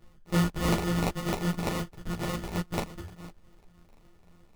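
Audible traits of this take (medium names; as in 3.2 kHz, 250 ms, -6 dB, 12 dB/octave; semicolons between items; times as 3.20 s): a buzz of ramps at a fixed pitch in blocks of 256 samples; phasing stages 2, 3.5 Hz, lowest notch 400–1600 Hz; aliases and images of a low sample rate 1.6 kHz, jitter 0%; a shimmering, thickened sound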